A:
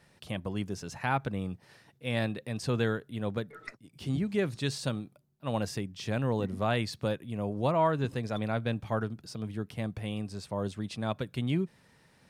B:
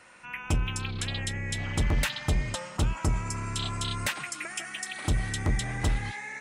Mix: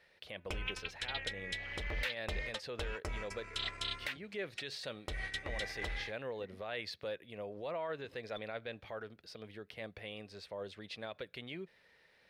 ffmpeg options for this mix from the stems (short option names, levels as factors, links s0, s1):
-filter_complex "[0:a]alimiter=level_in=1.19:limit=0.0631:level=0:latency=1:release=51,volume=0.841,volume=0.376[s0];[1:a]agate=range=0.00794:threshold=0.0316:ratio=16:detection=peak,acompressor=threshold=0.0126:ratio=4,volume=1.19[s1];[s0][s1]amix=inputs=2:normalize=0,equalizer=f=125:t=o:w=1:g=-11,equalizer=f=250:t=o:w=1:g=-7,equalizer=f=500:t=o:w=1:g=8,equalizer=f=1000:t=o:w=1:g=-3,equalizer=f=2000:t=o:w=1:g=9,equalizer=f=4000:t=o:w=1:g=7,equalizer=f=8000:t=o:w=1:g=-9,alimiter=level_in=1.26:limit=0.0631:level=0:latency=1:release=222,volume=0.794"